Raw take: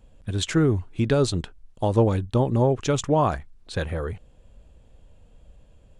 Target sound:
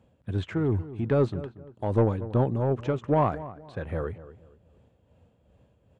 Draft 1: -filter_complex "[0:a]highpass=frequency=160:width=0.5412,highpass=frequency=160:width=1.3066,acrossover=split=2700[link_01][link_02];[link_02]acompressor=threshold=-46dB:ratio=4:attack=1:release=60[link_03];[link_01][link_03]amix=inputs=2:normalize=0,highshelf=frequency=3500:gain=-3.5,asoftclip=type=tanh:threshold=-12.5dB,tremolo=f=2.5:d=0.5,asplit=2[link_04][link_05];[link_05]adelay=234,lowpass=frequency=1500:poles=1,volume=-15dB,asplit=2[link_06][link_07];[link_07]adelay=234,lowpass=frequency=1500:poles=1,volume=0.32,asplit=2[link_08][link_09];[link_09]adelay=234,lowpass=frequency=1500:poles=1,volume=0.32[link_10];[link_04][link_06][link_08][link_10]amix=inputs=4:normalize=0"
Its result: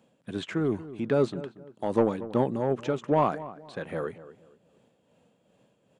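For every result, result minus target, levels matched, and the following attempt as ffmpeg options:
8,000 Hz band +9.5 dB; 125 Hz band −7.0 dB
-filter_complex "[0:a]highpass=frequency=160:width=0.5412,highpass=frequency=160:width=1.3066,acrossover=split=2700[link_01][link_02];[link_02]acompressor=threshold=-46dB:ratio=4:attack=1:release=60[link_03];[link_01][link_03]amix=inputs=2:normalize=0,highshelf=frequency=3500:gain=-13.5,asoftclip=type=tanh:threshold=-12.5dB,tremolo=f=2.5:d=0.5,asplit=2[link_04][link_05];[link_05]adelay=234,lowpass=frequency=1500:poles=1,volume=-15dB,asplit=2[link_06][link_07];[link_07]adelay=234,lowpass=frequency=1500:poles=1,volume=0.32,asplit=2[link_08][link_09];[link_09]adelay=234,lowpass=frequency=1500:poles=1,volume=0.32[link_10];[link_04][link_06][link_08][link_10]amix=inputs=4:normalize=0"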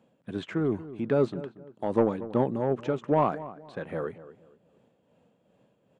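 125 Hz band −6.5 dB
-filter_complex "[0:a]highpass=frequency=79:width=0.5412,highpass=frequency=79:width=1.3066,acrossover=split=2700[link_01][link_02];[link_02]acompressor=threshold=-46dB:ratio=4:attack=1:release=60[link_03];[link_01][link_03]amix=inputs=2:normalize=0,highshelf=frequency=3500:gain=-13.5,asoftclip=type=tanh:threshold=-12.5dB,tremolo=f=2.5:d=0.5,asplit=2[link_04][link_05];[link_05]adelay=234,lowpass=frequency=1500:poles=1,volume=-15dB,asplit=2[link_06][link_07];[link_07]adelay=234,lowpass=frequency=1500:poles=1,volume=0.32,asplit=2[link_08][link_09];[link_09]adelay=234,lowpass=frequency=1500:poles=1,volume=0.32[link_10];[link_04][link_06][link_08][link_10]amix=inputs=4:normalize=0"

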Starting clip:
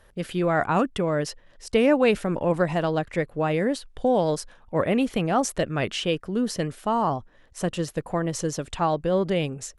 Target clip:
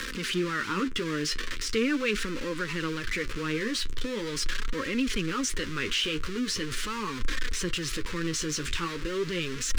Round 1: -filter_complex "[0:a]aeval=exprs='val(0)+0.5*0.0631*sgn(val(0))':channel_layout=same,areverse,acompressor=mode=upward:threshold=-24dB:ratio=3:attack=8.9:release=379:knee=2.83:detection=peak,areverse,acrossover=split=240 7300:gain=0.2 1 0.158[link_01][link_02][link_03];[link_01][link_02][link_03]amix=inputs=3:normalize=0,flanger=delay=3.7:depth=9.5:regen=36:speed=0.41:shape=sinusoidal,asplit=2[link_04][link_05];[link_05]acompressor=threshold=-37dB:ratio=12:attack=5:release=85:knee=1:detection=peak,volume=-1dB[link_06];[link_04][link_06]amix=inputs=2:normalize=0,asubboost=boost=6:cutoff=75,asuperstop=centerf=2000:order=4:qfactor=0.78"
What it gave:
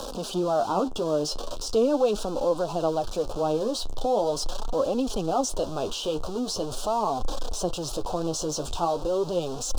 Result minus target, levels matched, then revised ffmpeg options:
2,000 Hz band −20.0 dB
-filter_complex "[0:a]aeval=exprs='val(0)+0.5*0.0631*sgn(val(0))':channel_layout=same,areverse,acompressor=mode=upward:threshold=-24dB:ratio=3:attack=8.9:release=379:knee=2.83:detection=peak,areverse,acrossover=split=240 7300:gain=0.2 1 0.158[link_01][link_02][link_03];[link_01][link_02][link_03]amix=inputs=3:normalize=0,flanger=delay=3.7:depth=9.5:regen=36:speed=0.41:shape=sinusoidal,asplit=2[link_04][link_05];[link_05]acompressor=threshold=-37dB:ratio=12:attack=5:release=85:knee=1:detection=peak,volume=-1dB[link_06];[link_04][link_06]amix=inputs=2:normalize=0,asubboost=boost=6:cutoff=75,asuperstop=centerf=710:order=4:qfactor=0.78"

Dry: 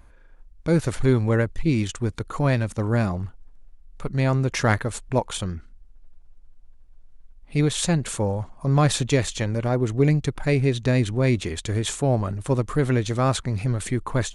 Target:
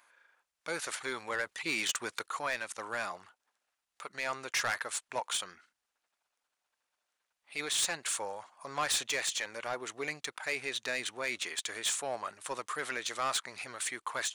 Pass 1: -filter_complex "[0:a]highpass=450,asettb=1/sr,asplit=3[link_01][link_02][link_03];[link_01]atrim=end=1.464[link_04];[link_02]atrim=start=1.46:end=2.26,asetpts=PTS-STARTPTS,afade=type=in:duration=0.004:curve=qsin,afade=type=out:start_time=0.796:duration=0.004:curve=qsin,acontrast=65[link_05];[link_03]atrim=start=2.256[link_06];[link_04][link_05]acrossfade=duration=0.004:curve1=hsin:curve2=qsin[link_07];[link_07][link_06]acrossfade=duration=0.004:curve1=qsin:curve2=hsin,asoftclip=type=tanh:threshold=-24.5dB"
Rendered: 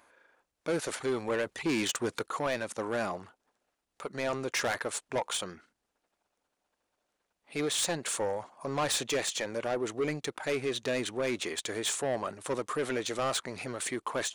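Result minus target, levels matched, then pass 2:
500 Hz band +7.0 dB
-filter_complex "[0:a]highpass=1100,asettb=1/sr,asplit=3[link_01][link_02][link_03];[link_01]atrim=end=1.464[link_04];[link_02]atrim=start=1.46:end=2.26,asetpts=PTS-STARTPTS,afade=type=in:duration=0.004:curve=qsin,afade=type=out:start_time=0.796:duration=0.004:curve=qsin,acontrast=65[link_05];[link_03]atrim=start=2.256[link_06];[link_04][link_05]acrossfade=duration=0.004:curve1=hsin:curve2=qsin[link_07];[link_07][link_06]acrossfade=duration=0.004:curve1=qsin:curve2=hsin,asoftclip=type=tanh:threshold=-24.5dB"

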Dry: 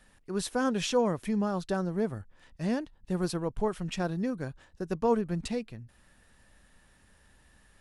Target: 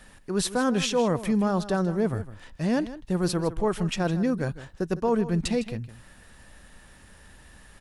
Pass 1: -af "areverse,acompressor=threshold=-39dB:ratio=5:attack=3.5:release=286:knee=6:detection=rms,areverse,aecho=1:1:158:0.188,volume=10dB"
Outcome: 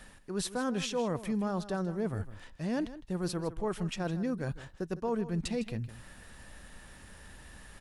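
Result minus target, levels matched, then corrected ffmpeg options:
downward compressor: peak gain reduction +8.5 dB
-af "areverse,acompressor=threshold=-28.5dB:ratio=5:attack=3.5:release=286:knee=6:detection=rms,areverse,aecho=1:1:158:0.188,volume=10dB"

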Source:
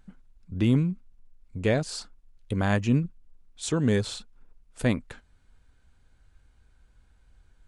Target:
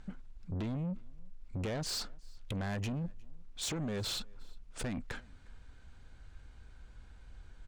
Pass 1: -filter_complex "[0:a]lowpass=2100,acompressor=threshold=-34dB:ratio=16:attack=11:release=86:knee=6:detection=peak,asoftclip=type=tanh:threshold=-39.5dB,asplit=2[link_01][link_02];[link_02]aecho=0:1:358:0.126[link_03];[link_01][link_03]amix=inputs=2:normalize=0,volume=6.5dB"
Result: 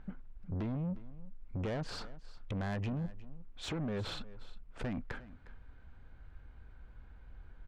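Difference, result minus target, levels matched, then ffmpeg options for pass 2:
8,000 Hz band −12.5 dB; echo-to-direct +9.5 dB
-filter_complex "[0:a]lowpass=7100,acompressor=threshold=-34dB:ratio=16:attack=11:release=86:knee=6:detection=peak,asoftclip=type=tanh:threshold=-39.5dB,asplit=2[link_01][link_02];[link_02]aecho=0:1:358:0.0422[link_03];[link_01][link_03]amix=inputs=2:normalize=0,volume=6.5dB"

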